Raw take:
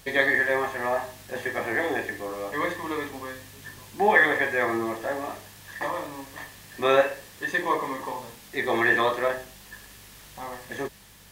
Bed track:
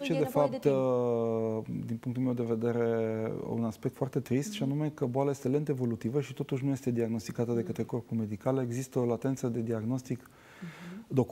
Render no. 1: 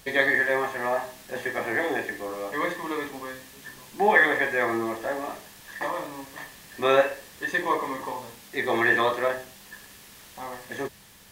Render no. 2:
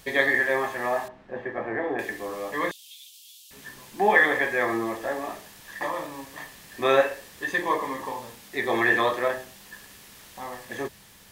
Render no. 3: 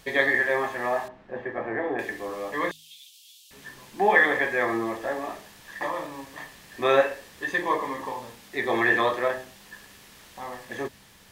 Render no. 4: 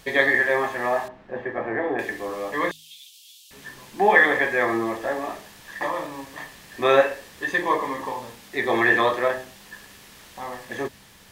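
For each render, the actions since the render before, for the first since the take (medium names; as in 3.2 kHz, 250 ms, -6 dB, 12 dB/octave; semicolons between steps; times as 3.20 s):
de-hum 50 Hz, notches 3
1.08–1.99 s: Bessel low-pass 1.2 kHz; 2.71–3.51 s: steep high-pass 2.8 kHz 72 dB/octave
treble shelf 7.6 kHz -6.5 dB; de-hum 52.7 Hz, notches 5
trim +3 dB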